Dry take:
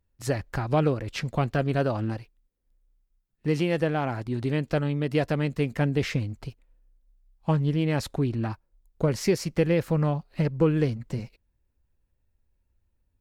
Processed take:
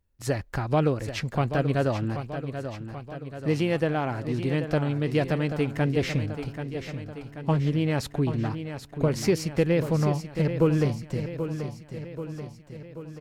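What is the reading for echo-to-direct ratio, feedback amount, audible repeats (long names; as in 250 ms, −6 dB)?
−7.5 dB, 58%, 6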